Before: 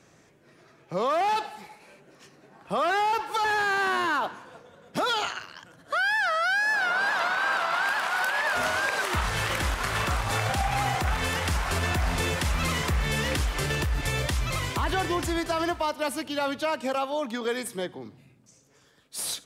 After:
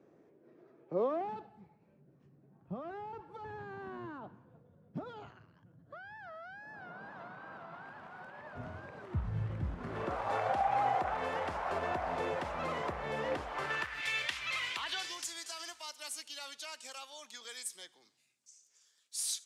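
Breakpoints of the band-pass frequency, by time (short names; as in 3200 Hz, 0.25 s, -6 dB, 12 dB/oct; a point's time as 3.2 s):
band-pass, Q 1.5
1.05 s 370 Hz
1.46 s 120 Hz
9.61 s 120 Hz
10.24 s 660 Hz
13.45 s 660 Hz
14.04 s 2500 Hz
14.67 s 2500 Hz
15.28 s 6800 Hz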